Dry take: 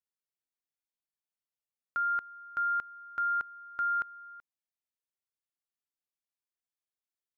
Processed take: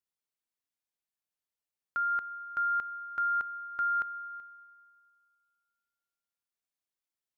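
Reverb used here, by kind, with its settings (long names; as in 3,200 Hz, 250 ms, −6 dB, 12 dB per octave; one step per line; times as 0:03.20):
spring reverb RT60 2.1 s, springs 30/38/49 ms, chirp 45 ms, DRR 16 dB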